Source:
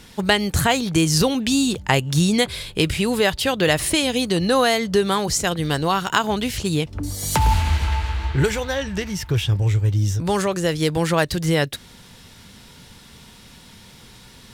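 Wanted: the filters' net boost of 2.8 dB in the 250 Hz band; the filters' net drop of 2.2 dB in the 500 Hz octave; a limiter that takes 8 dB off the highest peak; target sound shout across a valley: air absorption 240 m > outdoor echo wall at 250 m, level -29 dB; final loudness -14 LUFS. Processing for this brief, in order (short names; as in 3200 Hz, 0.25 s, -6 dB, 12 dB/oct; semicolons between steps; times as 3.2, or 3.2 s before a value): bell 250 Hz +5 dB; bell 500 Hz -3.5 dB; limiter -10.5 dBFS; air absorption 240 m; outdoor echo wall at 250 m, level -29 dB; gain +8.5 dB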